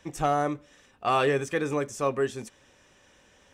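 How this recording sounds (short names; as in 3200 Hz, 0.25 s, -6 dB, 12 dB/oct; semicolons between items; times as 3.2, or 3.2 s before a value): noise floor -60 dBFS; spectral tilt -5.0 dB/oct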